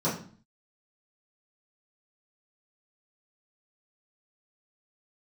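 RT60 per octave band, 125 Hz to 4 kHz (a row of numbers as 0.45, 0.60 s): 0.60, 0.60, 0.45, 0.45, 0.40, 0.40 s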